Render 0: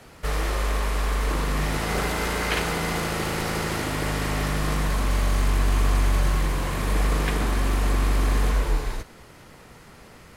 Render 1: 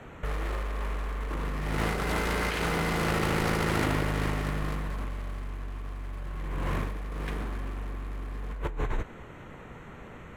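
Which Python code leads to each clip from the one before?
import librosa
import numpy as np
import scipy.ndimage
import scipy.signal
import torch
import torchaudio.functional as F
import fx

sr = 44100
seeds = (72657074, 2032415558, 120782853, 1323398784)

y = fx.wiener(x, sr, points=9)
y = fx.peak_eq(y, sr, hz=730.0, db=-2.0, octaves=0.77)
y = fx.over_compress(y, sr, threshold_db=-29.0, ratio=-1.0)
y = y * librosa.db_to_amplitude(-2.0)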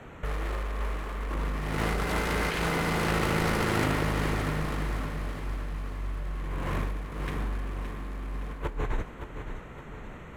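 y = fx.echo_feedback(x, sr, ms=567, feedback_pct=50, wet_db=-9.0)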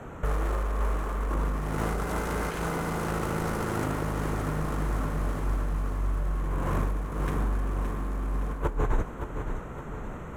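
y = fx.band_shelf(x, sr, hz=3000.0, db=-8.0, octaves=1.7)
y = fx.rider(y, sr, range_db=4, speed_s=0.5)
y = y * librosa.db_to_amplitude(1.5)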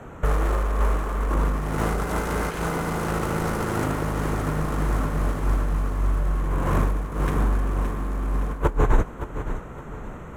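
y = fx.upward_expand(x, sr, threshold_db=-36.0, expansion=1.5)
y = y * librosa.db_to_amplitude(8.5)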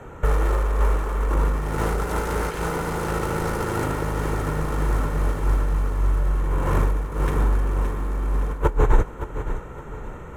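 y = x + 0.33 * np.pad(x, (int(2.2 * sr / 1000.0), 0))[:len(x)]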